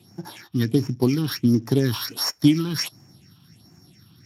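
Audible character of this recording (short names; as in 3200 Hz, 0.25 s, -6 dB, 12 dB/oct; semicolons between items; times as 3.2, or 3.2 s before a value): a buzz of ramps at a fixed pitch in blocks of 8 samples; phasing stages 6, 1.4 Hz, lowest notch 530–3700 Hz; Speex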